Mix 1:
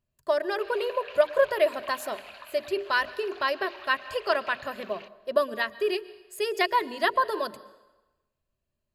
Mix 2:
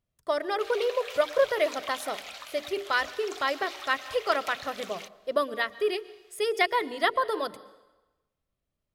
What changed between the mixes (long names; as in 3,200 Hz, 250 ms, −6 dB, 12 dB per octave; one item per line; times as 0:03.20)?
background: remove high-frequency loss of the air 300 metres
master: remove EQ curve with evenly spaced ripples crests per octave 1.4, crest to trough 8 dB